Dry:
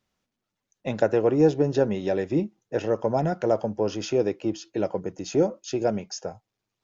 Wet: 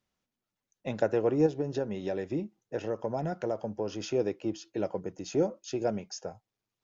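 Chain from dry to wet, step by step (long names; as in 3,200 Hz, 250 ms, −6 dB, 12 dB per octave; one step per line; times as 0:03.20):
0:01.46–0:04.00: downward compressor 3 to 1, threshold −23 dBFS, peak gain reduction 6 dB
level −5.5 dB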